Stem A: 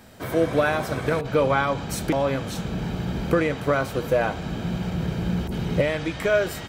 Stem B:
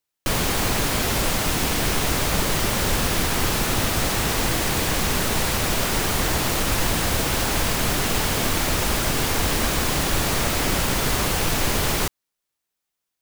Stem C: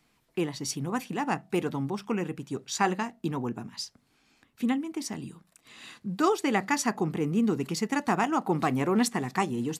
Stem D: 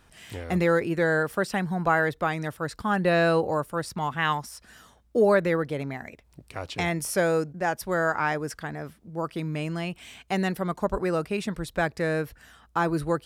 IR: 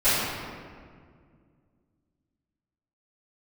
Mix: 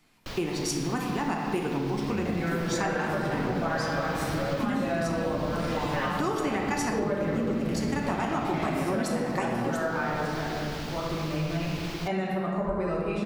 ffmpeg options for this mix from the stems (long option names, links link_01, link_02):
-filter_complex "[0:a]asoftclip=type=tanh:threshold=-26dB,adelay=2250,volume=-11.5dB,asplit=2[link_01][link_02];[link_02]volume=-6.5dB[link_03];[1:a]highshelf=frequency=6900:width_type=q:width=1.5:gain=-13.5,acrusher=bits=5:mix=0:aa=0.000001,volume=-15.5dB[link_04];[2:a]volume=1dB,asplit=3[link_05][link_06][link_07];[link_06]volume=-16.5dB[link_08];[3:a]lowpass=frequency=3400:poles=1,adelay=1750,volume=-8.5dB,asplit=2[link_09][link_10];[link_10]volume=-9dB[link_11];[link_07]apad=whole_len=582865[link_12];[link_04][link_12]sidechaincompress=threshold=-28dB:ratio=3:attack=16:release=1260[link_13];[4:a]atrim=start_sample=2205[link_14];[link_03][link_08][link_11]amix=inputs=3:normalize=0[link_15];[link_15][link_14]afir=irnorm=-1:irlink=0[link_16];[link_01][link_13][link_05][link_09][link_16]amix=inputs=5:normalize=0,acompressor=threshold=-25dB:ratio=6"